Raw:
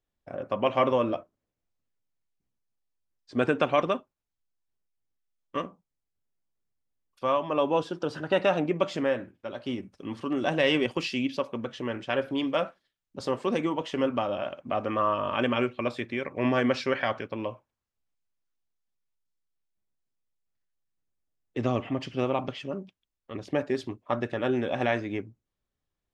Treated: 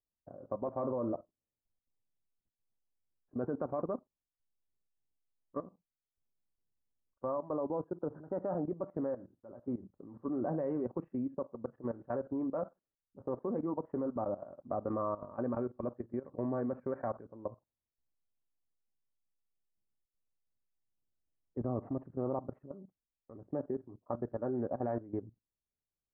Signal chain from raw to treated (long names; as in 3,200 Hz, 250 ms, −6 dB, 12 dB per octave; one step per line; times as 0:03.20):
Bessel low-pass filter 740 Hz, order 8
output level in coarse steps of 16 dB
level −2 dB